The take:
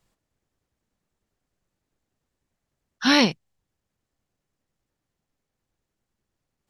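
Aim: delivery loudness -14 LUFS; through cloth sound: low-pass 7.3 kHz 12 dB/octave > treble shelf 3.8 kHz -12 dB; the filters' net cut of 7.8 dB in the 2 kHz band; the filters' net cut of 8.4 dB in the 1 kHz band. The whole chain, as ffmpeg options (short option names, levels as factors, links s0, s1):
-af "lowpass=7300,equalizer=f=1000:t=o:g=-8.5,equalizer=f=2000:t=o:g=-4,highshelf=f=3800:g=-12,volume=3.16"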